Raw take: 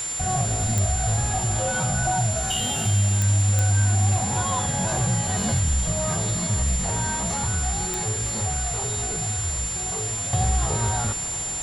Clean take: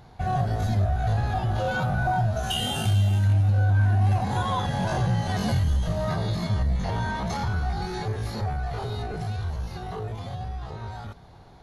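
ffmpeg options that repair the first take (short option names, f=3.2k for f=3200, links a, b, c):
-af "adeclick=t=4,bandreject=f=7.2k:w=30,afwtdn=0.018,asetnsamples=n=441:p=0,asendcmd='10.33 volume volume -11dB',volume=0dB"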